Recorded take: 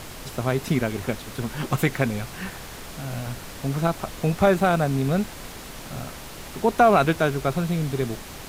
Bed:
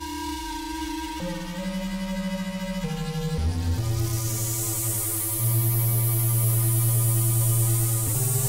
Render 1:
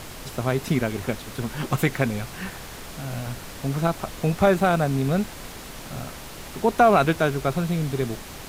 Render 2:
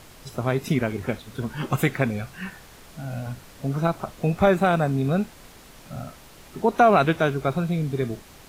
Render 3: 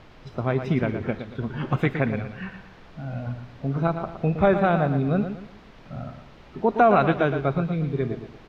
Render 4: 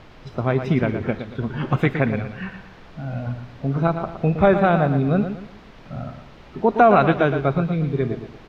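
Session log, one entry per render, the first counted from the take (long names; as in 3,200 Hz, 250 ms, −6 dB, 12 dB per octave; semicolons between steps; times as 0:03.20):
no processing that can be heard
noise reduction from a noise print 9 dB
high-frequency loss of the air 250 metres; repeating echo 116 ms, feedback 36%, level −9 dB
level +3.5 dB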